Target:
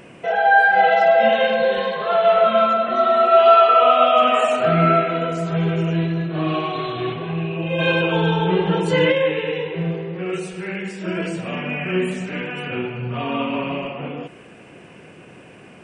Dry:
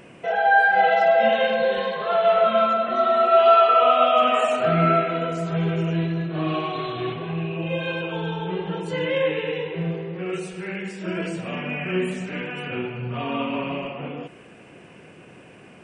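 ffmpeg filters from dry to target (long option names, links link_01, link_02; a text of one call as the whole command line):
ffmpeg -i in.wav -filter_complex "[0:a]asplit=3[link_01][link_02][link_03];[link_01]afade=type=out:start_time=7.78:duration=0.02[link_04];[link_02]acontrast=61,afade=type=in:start_time=7.78:duration=0.02,afade=type=out:start_time=9.11:duration=0.02[link_05];[link_03]afade=type=in:start_time=9.11:duration=0.02[link_06];[link_04][link_05][link_06]amix=inputs=3:normalize=0,volume=3dB" out.wav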